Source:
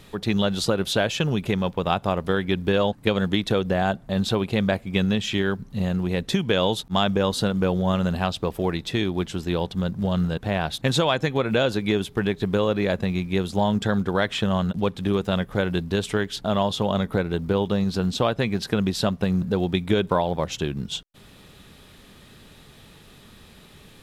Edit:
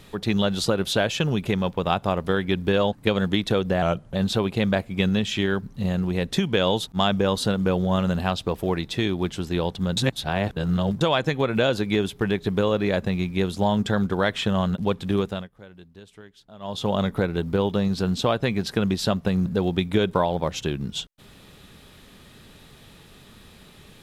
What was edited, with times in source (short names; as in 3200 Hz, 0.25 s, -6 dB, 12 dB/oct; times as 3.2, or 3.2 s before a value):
3.82–4.11 speed 88%
9.93–10.97 reverse
15.15–16.85 dip -22 dB, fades 0.29 s